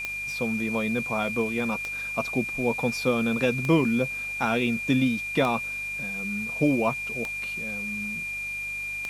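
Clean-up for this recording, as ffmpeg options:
ffmpeg -i in.wav -af "adeclick=threshold=4,bandreject=frequency=49.7:width_type=h:width=4,bandreject=frequency=99.4:width_type=h:width=4,bandreject=frequency=149.1:width_type=h:width=4,bandreject=frequency=198.8:width_type=h:width=4,bandreject=frequency=2400:width=30,afwtdn=0.004" out.wav

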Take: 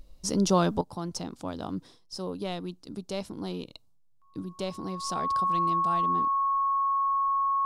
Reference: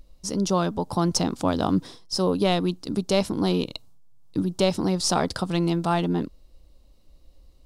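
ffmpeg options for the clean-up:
ffmpeg -i in.wav -af "bandreject=frequency=1100:width=30,asetnsamples=nb_out_samples=441:pad=0,asendcmd='0.81 volume volume 12dB',volume=0dB" out.wav

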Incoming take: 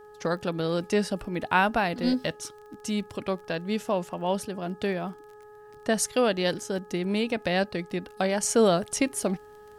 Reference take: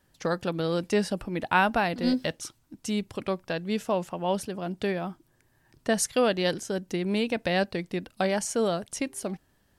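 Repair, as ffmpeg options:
ffmpeg -i in.wav -af "adeclick=threshold=4,bandreject=frequency=420.9:width_type=h:width=4,bandreject=frequency=841.8:width_type=h:width=4,bandreject=frequency=1262.7:width_type=h:width=4,bandreject=frequency=1683.6:width_type=h:width=4,asetnsamples=nb_out_samples=441:pad=0,asendcmd='8.43 volume volume -5.5dB',volume=0dB" out.wav

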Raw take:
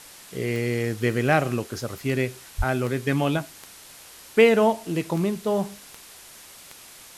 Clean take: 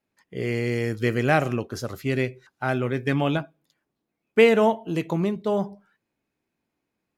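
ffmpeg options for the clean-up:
ffmpeg -i in.wav -filter_complex "[0:a]adeclick=threshold=4,asplit=3[link_01][link_02][link_03];[link_01]afade=type=out:start_time=2.57:duration=0.02[link_04];[link_02]highpass=frequency=140:width=0.5412,highpass=frequency=140:width=1.3066,afade=type=in:start_time=2.57:duration=0.02,afade=type=out:start_time=2.69:duration=0.02[link_05];[link_03]afade=type=in:start_time=2.69:duration=0.02[link_06];[link_04][link_05][link_06]amix=inputs=3:normalize=0,afwtdn=0.0063" out.wav

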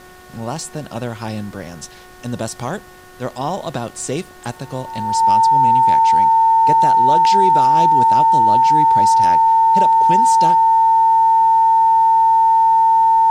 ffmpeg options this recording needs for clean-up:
ffmpeg -i in.wav -af "bandreject=frequency=365.8:width_type=h:width=4,bandreject=frequency=731.6:width_type=h:width=4,bandreject=frequency=1097.4:width_type=h:width=4,bandreject=frequency=1463.2:width_type=h:width=4,bandreject=frequency=1829:width_type=h:width=4,bandreject=frequency=900:width=30,agate=range=-21dB:threshold=-32dB" out.wav

